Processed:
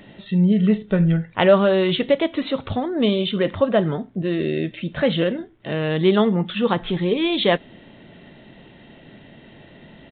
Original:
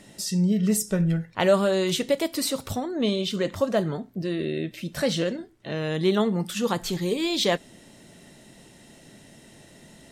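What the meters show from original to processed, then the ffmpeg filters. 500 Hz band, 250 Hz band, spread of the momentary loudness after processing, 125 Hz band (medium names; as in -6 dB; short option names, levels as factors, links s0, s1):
+5.5 dB, +5.5 dB, 8 LU, +5.5 dB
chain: -af "aresample=8000,aresample=44100,volume=1.88"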